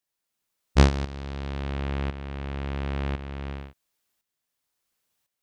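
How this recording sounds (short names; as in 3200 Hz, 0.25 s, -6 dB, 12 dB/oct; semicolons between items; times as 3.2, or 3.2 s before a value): tremolo saw up 0.95 Hz, depth 70%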